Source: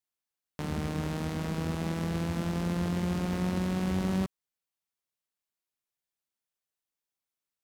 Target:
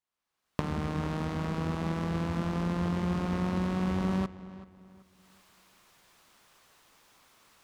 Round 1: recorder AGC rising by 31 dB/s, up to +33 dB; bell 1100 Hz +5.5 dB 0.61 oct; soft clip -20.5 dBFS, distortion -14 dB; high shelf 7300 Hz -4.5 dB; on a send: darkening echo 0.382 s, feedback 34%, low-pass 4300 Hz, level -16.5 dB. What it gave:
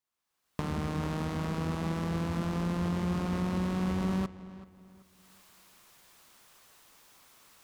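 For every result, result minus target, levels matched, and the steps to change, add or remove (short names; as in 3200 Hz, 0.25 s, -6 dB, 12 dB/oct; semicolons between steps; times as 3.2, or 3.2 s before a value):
8000 Hz band +3.5 dB; soft clip: distortion +4 dB
change: high shelf 7300 Hz -13 dB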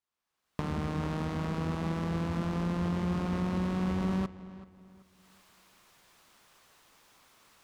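soft clip: distortion +4 dB
change: soft clip -12 dBFS, distortion -18 dB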